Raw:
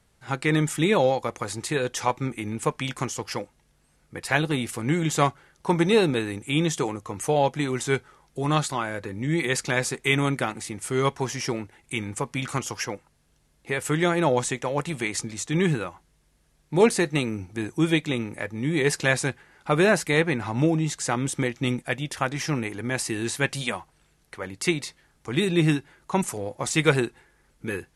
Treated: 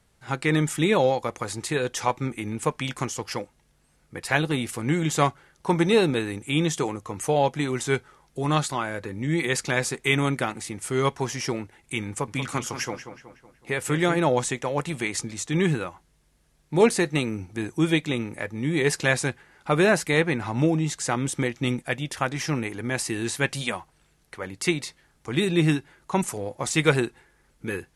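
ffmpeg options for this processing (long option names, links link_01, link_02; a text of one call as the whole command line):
ffmpeg -i in.wav -filter_complex "[0:a]asettb=1/sr,asplit=3[link_01][link_02][link_03];[link_01]atrim=end=12.094[link_04];[link_02]atrim=start=12.09:end=14.19,asetpts=PTS-STARTPTS,afade=type=in:duration=0.004:curve=qsin,afade=type=out:start_time=2.096:duration=0.004:curve=qsin,asplit=2[link_05][link_06];[link_06]adelay=186,lowpass=frequency=3400:poles=1,volume=-9.5dB,asplit=2[link_07][link_08];[link_08]adelay=186,lowpass=frequency=3400:poles=1,volume=0.5,asplit=2[link_09][link_10];[link_10]adelay=186,lowpass=frequency=3400:poles=1,volume=0.5,asplit=2[link_11][link_12];[link_12]adelay=186,lowpass=frequency=3400:poles=1,volume=0.5,asplit=2[link_13][link_14];[link_14]adelay=186,lowpass=frequency=3400:poles=1,volume=0.5,asplit=2[link_15][link_16];[link_16]adelay=186,lowpass=frequency=3400:poles=1,volume=0.5[link_17];[link_05][link_07][link_09][link_11][link_13][link_15][link_17]amix=inputs=7:normalize=0,atrim=end_sample=92610[link_18];[link_03]atrim=start=14.186[link_19];[link_04][link_18]acrossfade=duration=0.004:curve1=hsin:curve2=qsin[link_20];[link_20][link_19]acrossfade=duration=0.004:curve1=qsin:curve2=hsin" out.wav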